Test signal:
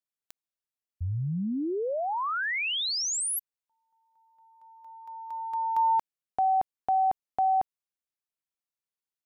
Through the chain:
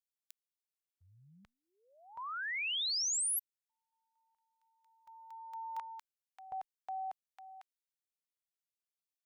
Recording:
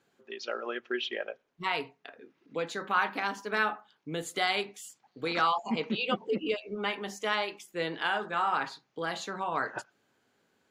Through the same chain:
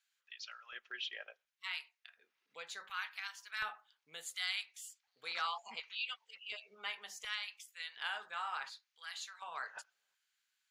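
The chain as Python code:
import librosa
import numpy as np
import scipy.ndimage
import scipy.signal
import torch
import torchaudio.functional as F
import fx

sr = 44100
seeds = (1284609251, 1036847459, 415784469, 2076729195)

y = fx.filter_lfo_highpass(x, sr, shape='square', hz=0.69, low_hz=310.0, high_hz=1600.0, q=0.77)
y = fx.tone_stack(y, sr, knobs='10-0-10')
y = y * 10.0 ** (-3.5 / 20.0)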